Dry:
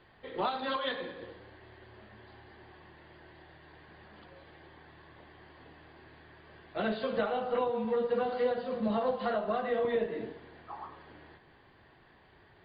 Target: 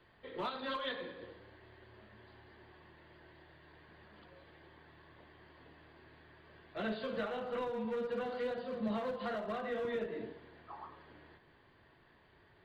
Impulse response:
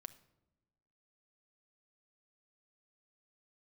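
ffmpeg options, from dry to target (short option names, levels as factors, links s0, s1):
-filter_complex "[0:a]bandreject=f=780:w=12,acrossover=split=420|1000[s0][s1][s2];[s1]asoftclip=type=hard:threshold=0.0126[s3];[s0][s3][s2]amix=inputs=3:normalize=0,volume=0.596"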